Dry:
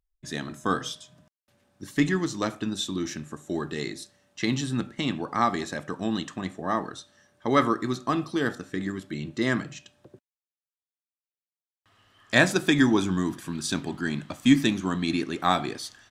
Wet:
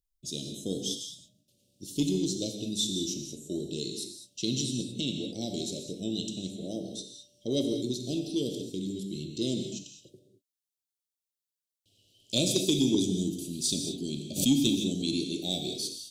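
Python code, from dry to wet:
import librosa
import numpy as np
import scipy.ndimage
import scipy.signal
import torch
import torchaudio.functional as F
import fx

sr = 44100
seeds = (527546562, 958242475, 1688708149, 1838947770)

y = scipy.signal.sosfilt(scipy.signal.cheby2(4, 50, [930.0, 1900.0], 'bandstop', fs=sr, output='sos'), x)
y = fx.high_shelf(y, sr, hz=2200.0, db=9.0)
y = fx.rev_gated(y, sr, seeds[0], gate_ms=240, shape='flat', drr_db=4.5)
y = 10.0 ** (-7.0 / 20.0) * np.tanh(y / 10.0 ** (-7.0 / 20.0))
y = fx.pre_swell(y, sr, db_per_s=86.0, at=(14.35, 15.23), fade=0.02)
y = y * librosa.db_to_amplitude(-5.0)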